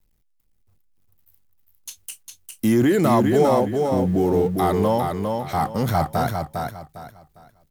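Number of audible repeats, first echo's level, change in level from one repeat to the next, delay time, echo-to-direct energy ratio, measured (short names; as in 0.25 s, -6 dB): 3, -4.5 dB, -11.0 dB, 0.404 s, -4.0 dB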